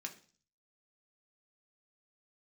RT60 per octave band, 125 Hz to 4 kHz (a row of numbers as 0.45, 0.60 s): 0.70, 0.55, 0.45, 0.40, 0.40, 0.55 s